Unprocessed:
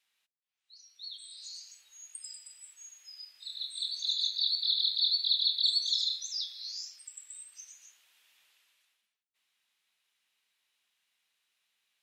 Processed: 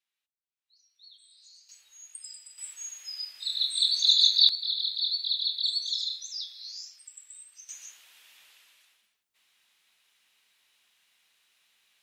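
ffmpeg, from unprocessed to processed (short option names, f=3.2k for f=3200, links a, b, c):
-af "asetnsamples=n=441:p=0,asendcmd='1.69 volume volume 1dB;2.58 volume volume 10.5dB;4.49 volume volume -1dB;7.69 volume volume 10dB',volume=-10dB"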